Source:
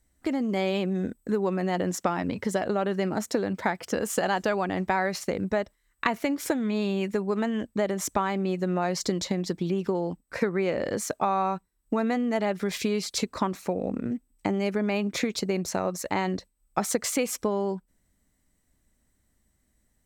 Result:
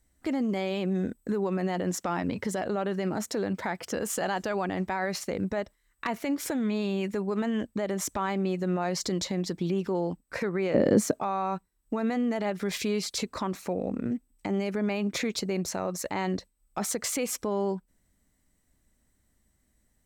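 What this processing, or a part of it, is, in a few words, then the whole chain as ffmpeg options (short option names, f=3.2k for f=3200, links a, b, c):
clipper into limiter: -filter_complex "[0:a]asoftclip=type=hard:threshold=-13dB,alimiter=limit=-20.5dB:level=0:latency=1:release=30,asettb=1/sr,asplit=3[a][b][c];[a]atrim=end=10.744[d];[b]atrim=start=10.74:end=11.19,asetpts=PTS-STARTPTS,afade=t=in:d=0.004:c=qsin,afade=t=out:st=0.446:d=0.004:c=qsin,equalizer=f=230:w=0.44:g=14[e];[c]atrim=start=11.186[f];[d][e]acrossfade=d=0.004:c1=hsin:c2=qsin[g];[g][f]acrossfade=d=0.004:c1=qsin:c2=hsin"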